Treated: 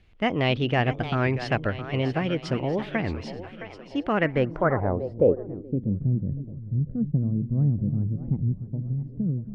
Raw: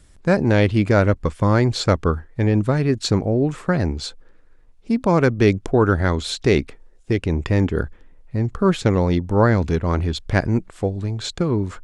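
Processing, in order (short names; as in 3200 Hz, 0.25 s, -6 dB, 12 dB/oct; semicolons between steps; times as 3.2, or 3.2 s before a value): varispeed +24%; split-band echo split 340 Hz, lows 0.274 s, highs 0.639 s, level -11 dB; low-pass sweep 3000 Hz -> 180 Hz, 4.03–6.01; record warp 33 1/3 rpm, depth 250 cents; gain -8 dB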